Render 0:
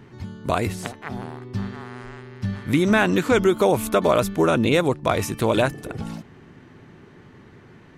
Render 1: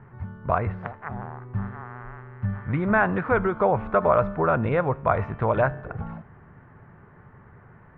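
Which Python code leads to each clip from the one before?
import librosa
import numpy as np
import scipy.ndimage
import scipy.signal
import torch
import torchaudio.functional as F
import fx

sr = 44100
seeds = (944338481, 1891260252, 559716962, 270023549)

y = scipy.signal.sosfilt(scipy.signal.butter(4, 1600.0, 'lowpass', fs=sr, output='sos'), x)
y = fx.peak_eq(y, sr, hz=300.0, db=-14.5, octaves=1.2)
y = fx.comb_fb(y, sr, f0_hz=67.0, decay_s=0.8, harmonics='all', damping=0.0, mix_pct=40)
y = y * 10.0 ** (6.5 / 20.0)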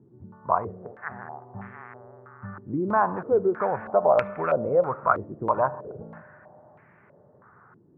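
y = scipy.signal.sosfilt(scipy.signal.bessel(2, 180.0, 'highpass', norm='mag', fs=sr, output='sos'), x)
y = fx.rev_spring(y, sr, rt60_s=3.2, pass_ms=(33, 39), chirp_ms=40, drr_db=17.5)
y = fx.filter_held_lowpass(y, sr, hz=3.1, low_hz=330.0, high_hz=2300.0)
y = y * 10.0 ** (-6.0 / 20.0)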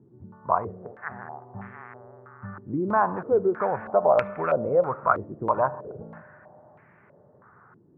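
y = x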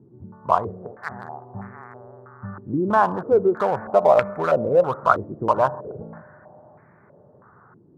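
y = fx.wiener(x, sr, points=15)
y = y * 10.0 ** (4.5 / 20.0)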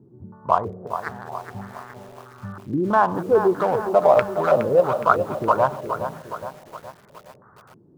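y = fx.echo_crushed(x, sr, ms=416, feedback_pct=55, bits=7, wet_db=-9.0)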